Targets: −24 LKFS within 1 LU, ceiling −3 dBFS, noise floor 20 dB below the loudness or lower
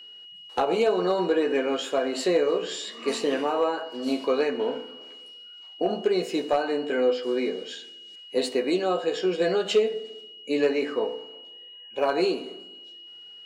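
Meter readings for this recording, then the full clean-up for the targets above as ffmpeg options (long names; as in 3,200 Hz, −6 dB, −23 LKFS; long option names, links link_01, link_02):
interfering tone 2,900 Hz; level of the tone −43 dBFS; integrated loudness −26.0 LKFS; sample peak −12.0 dBFS; target loudness −24.0 LKFS
→ -af "bandreject=frequency=2900:width=30"
-af "volume=2dB"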